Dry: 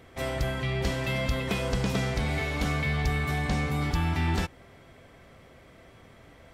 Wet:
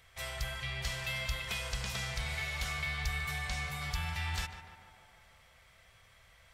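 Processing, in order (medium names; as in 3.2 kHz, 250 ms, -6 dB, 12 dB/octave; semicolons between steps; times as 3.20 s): amplifier tone stack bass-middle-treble 10-0-10; on a send: tape echo 149 ms, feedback 75%, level -8 dB, low-pass 1.9 kHz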